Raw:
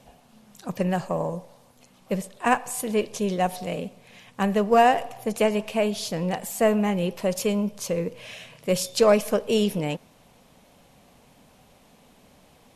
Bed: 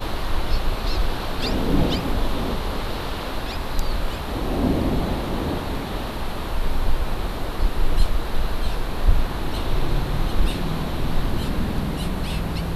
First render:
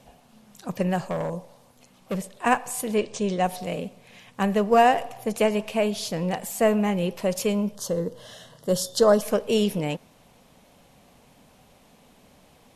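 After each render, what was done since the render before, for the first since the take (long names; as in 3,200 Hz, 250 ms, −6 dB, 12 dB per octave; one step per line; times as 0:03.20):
0:01.00–0:02.37: hard clipping −23 dBFS
0:02.98–0:03.45: Butterworth low-pass 9,100 Hz 96 dB per octave
0:07.75–0:09.22: Butterworth band-reject 2,400 Hz, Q 1.8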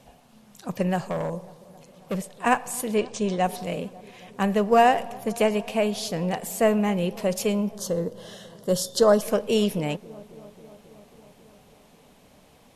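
delay with a low-pass on its return 271 ms, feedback 73%, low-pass 1,100 Hz, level −21 dB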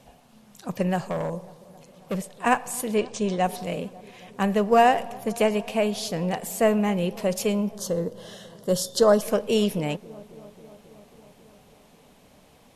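no processing that can be heard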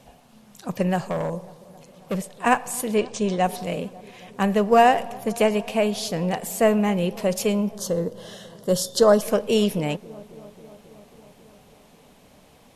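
level +2 dB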